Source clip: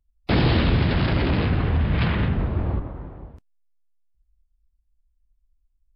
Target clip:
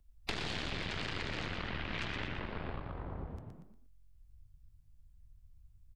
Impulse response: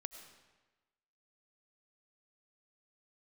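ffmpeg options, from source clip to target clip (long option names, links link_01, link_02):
-filter_complex "[0:a]aeval=exprs='0.335*(cos(1*acos(clip(val(0)/0.335,-1,1)))-cos(1*PI/2))+0.168*(cos(4*acos(clip(val(0)/0.335,-1,1)))-cos(4*PI/2))':channel_layout=same,acrossover=split=430|1500[link_01][link_02][link_03];[link_01]acompressor=threshold=-35dB:ratio=4[link_04];[link_02]acompressor=threshold=-42dB:ratio=4[link_05];[link_03]acompressor=threshold=-32dB:ratio=4[link_06];[link_04][link_05][link_06]amix=inputs=3:normalize=0,asplit=2[link_07][link_08];[link_08]asplit=4[link_09][link_10][link_11][link_12];[link_09]adelay=118,afreqshift=44,volume=-8dB[link_13];[link_10]adelay=236,afreqshift=88,volume=-17.9dB[link_14];[link_11]adelay=354,afreqshift=132,volume=-27.8dB[link_15];[link_12]adelay=472,afreqshift=176,volume=-37.7dB[link_16];[link_13][link_14][link_15][link_16]amix=inputs=4:normalize=0[link_17];[link_07][link_17]amix=inputs=2:normalize=0,acompressor=threshold=-48dB:ratio=2.5,volume=6dB"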